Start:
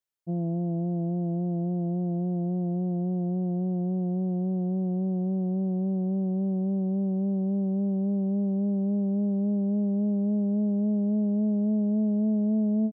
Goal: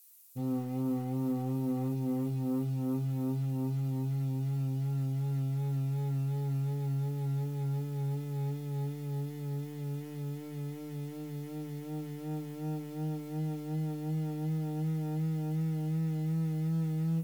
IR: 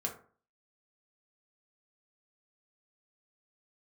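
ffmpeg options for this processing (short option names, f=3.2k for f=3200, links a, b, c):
-filter_complex "[0:a]aemphasis=mode=production:type=50kf,bandreject=f=57.86:t=h:w=4,bandreject=f=115.72:t=h:w=4,bandreject=f=173.58:t=h:w=4,bandreject=f=231.44:t=h:w=4,alimiter=level_in=4dB:limit=-24dB:level=0:latency=1:release=63,volume=-4dB,acontrast=57,asoftclip=type=tanh:threshold=-24dB,crystalizer=i=4.5:c=0,asetrate=33075,aresample=44100,acrusher=bits=6:mode=log:mix=0:aa=0.000001[a];[1:a]atrim=start_sample=2205,asetrate=79380,aresample=44100[b];[a][b]afir=irnorm=-1:irlink=0"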